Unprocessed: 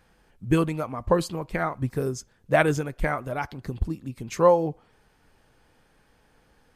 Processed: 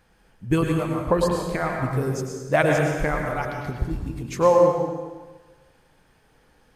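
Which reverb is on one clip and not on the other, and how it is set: plate-style reverb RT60 1.3 s, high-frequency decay 0.9×, pre-delay 90 ms, DRR 1 dB

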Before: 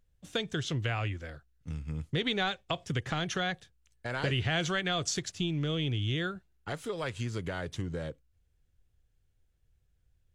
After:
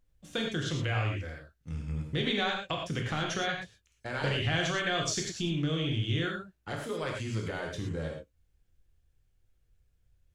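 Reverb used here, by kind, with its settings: gated-style reverb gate 140 ms flat, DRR -0.5 dB; trim -2 dB

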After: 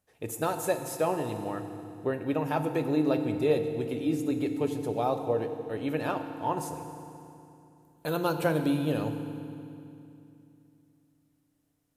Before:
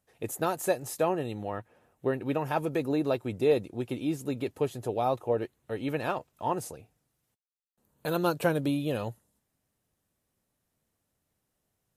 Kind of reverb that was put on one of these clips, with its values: FDN reverb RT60 2.7 s, low-frequency decay 1.35×, high-frequency decay 0.9×, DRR 6.5 dB; trim -1 dB

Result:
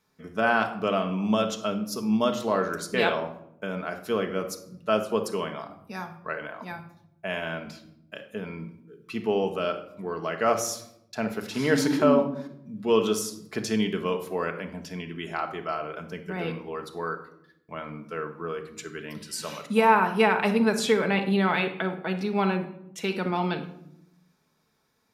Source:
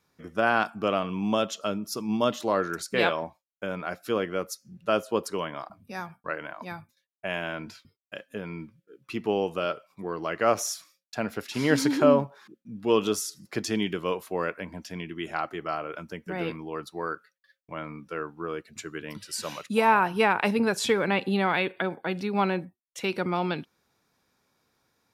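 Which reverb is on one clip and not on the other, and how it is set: simulated room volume 1900 m³, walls furnished, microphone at 1.5 m; trim -1 dB

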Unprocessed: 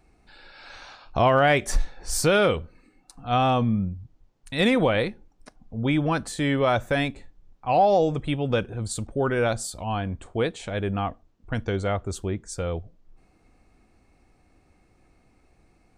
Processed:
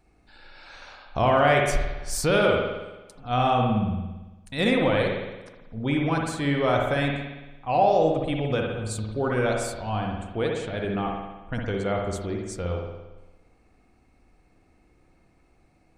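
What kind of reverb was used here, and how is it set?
spring tank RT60 1.1 s, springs 56 ms, chirp 30 ms, DRR 0.5 dB; trim -3 dB

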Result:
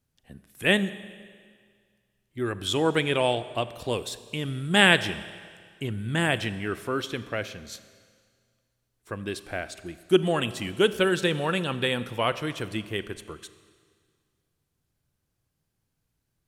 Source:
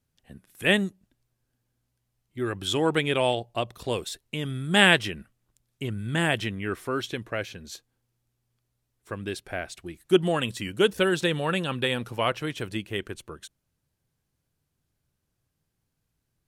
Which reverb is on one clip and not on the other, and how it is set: Schroeder reverb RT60 1.9 s, combs from 29 ms, DRR 14 dB

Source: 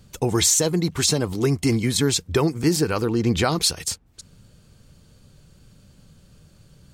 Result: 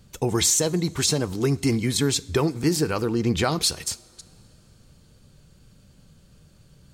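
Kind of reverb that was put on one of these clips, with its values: two-slope reverb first 0.5 s, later 3.4 s, from -16 dB, DRR 18 dB; trim -2 dB

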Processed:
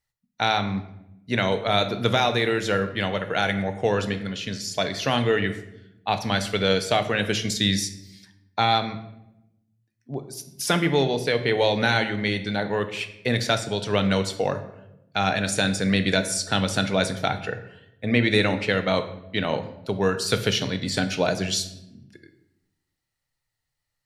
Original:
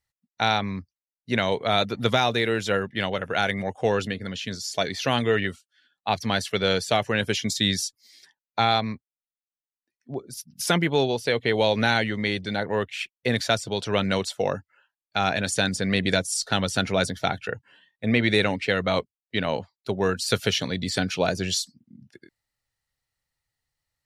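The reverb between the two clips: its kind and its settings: simulated room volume 270 m³, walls mixed, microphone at 0.45 m

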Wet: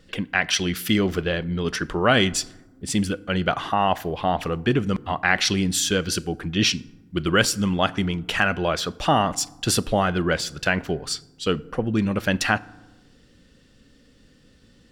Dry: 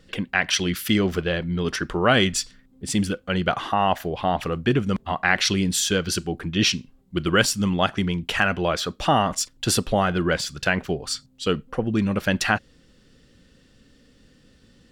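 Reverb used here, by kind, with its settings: FDN reverb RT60 1.1 s, low-frequency decay 1.45×, high-frequency decay 0.5×, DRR 19.5 dB

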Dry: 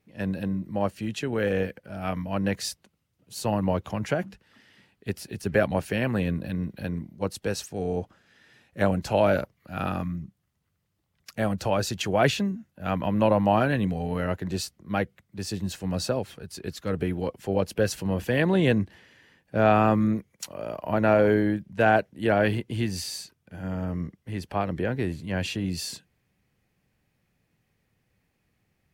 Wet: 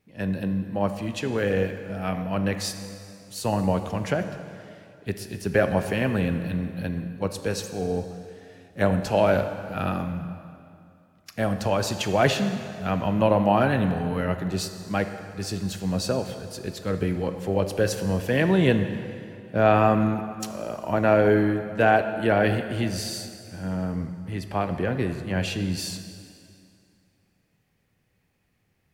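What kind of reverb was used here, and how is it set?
plate-style reverb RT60 2.5 s, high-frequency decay 0.85×, DRR 7.5 dB; trim +1 dB

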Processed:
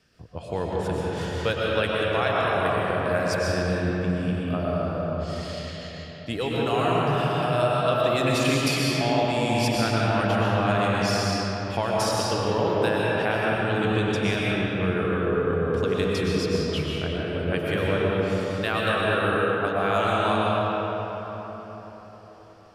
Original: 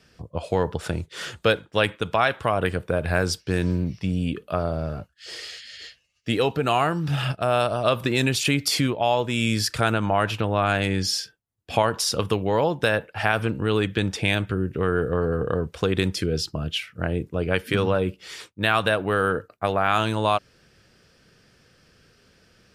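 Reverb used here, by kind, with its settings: algorithmic reverb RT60 4.6 s, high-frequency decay 0.5×, pre-delay 80 ms, DRR -5.5 dB; trim -7 dB

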